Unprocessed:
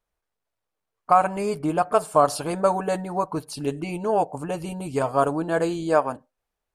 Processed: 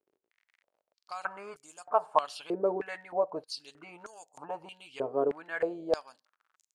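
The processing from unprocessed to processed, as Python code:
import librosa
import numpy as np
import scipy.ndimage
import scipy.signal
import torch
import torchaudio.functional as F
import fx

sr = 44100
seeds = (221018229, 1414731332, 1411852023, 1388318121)

y = fx.dmg_crackle(x, sr, seeds[0], per_s=50.0, level_db=-39.0)
y = fx.filter_held_bandpass(y, sr, hz=3.2, low_hz=390.0, high_hz=6900.0)
y = F.gain(torch.from_numpy(y), 2.0).numpy()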